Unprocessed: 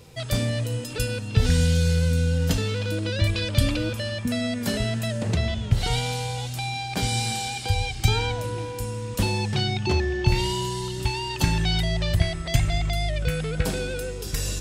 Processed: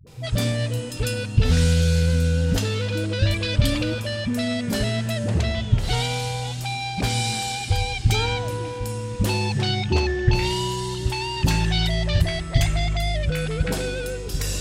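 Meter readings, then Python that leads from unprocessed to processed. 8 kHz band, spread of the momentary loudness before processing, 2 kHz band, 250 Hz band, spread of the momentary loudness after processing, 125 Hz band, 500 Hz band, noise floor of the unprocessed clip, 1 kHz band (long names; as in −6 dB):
+1.0 dB, 7 LU, +2.0 dB, +2.0 dB, 7 LU, +2.0 dB, +2.0 dB, −33 dBFS, +2.0 dB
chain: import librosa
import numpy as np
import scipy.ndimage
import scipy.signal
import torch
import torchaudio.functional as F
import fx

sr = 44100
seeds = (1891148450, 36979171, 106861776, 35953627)

y = fx.dispersion(x, sr, late='highs', ms=70.0, hz=310.0)
y = fx.doppler_dist(y, sr, depth_ms=0.19)
y = y * librosa.db_to_amplitude(2.0)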